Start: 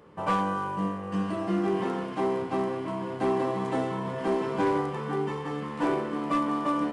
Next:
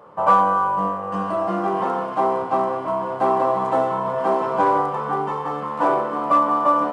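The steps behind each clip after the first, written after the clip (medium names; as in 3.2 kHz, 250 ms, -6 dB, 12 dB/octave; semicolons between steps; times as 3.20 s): high-pass 75 Hz; high-order bell 850 Hz +12.5 dB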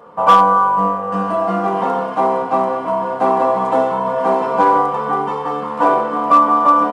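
comb 4.2 ms, depth 51%; hard clipper -6.5 dBFS, distortion -28 dB; trim +3.5 dB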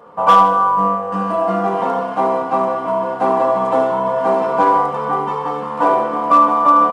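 feedback delay 76 ms, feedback 50%, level -10 dB; trim -1 dB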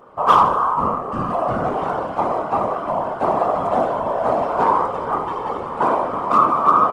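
whisper effect; trim -3.5 dB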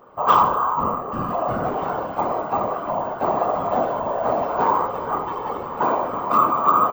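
careless resampling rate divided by 2×, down filtered, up hold; trim -2.5 dB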